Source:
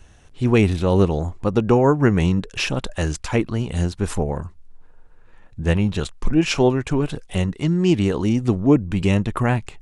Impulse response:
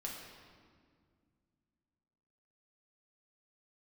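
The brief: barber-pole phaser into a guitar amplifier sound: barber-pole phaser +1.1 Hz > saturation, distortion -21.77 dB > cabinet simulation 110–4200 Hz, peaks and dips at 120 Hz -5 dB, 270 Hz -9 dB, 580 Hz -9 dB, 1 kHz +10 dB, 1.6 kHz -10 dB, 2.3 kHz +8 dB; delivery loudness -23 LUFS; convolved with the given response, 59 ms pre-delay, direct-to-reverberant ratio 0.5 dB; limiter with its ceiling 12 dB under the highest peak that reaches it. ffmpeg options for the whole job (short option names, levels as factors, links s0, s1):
-filter_complex "[0:a]alimiter=limit=0.188:level=0:latency=1,asplit=2[s0][s1];[1:a]atrim=start_sample=2205,adelay=59[s2];[s1][s2]afir=irnorm=-1:irlink=0,volume=1[s3];[s0][s3]amix=inputs=2:normalize=0,asplit=2[s4][s5];[s5]afreqshift=1.1[s6];[s4][s6]amix=inputs=2:normalize=1,asoftclip=threshold=0.211,highpass=110,equalizer=f=120:t=q:w=4:g=-5,equalizer=f=270:t=q:w=4:g=-9,equalizer=f=580:t=q:w=4:g=-9,equalizer=f=1000:t=q:w=4:g=10,equalizer=f=1600:t=q:w=4:g=-10,equalizer=f=2300:t=q:w=4:g=8,lowpass=f=4200:w=0.5412,lowpass=f=4200:w=1.3066,volume=1.78"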